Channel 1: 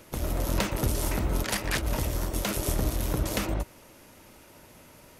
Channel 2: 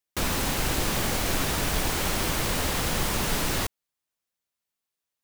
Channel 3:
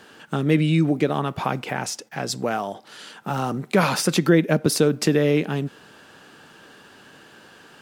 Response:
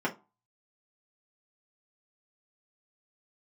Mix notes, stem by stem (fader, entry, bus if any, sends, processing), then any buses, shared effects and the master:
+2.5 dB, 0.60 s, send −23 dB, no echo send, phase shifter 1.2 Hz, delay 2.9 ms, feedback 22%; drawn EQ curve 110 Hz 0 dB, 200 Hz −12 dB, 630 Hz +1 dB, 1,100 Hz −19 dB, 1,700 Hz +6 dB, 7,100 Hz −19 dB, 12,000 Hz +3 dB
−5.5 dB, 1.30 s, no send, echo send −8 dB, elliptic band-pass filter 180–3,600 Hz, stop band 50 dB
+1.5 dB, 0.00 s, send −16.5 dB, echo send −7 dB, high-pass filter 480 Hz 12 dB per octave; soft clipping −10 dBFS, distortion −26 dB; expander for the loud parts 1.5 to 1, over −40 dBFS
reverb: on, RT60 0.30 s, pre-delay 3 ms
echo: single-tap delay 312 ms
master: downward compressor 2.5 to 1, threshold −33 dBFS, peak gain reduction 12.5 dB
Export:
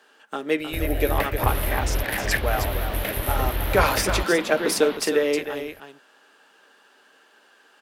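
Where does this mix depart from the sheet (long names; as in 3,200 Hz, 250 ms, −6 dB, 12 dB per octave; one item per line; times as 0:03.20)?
stem 3: missing soft clipping −10 dBFS, distortion −26 dB
master: missing downward compressor 2.5 to 1, threshold −33 dBFS, peak gain reduction 12.5 dB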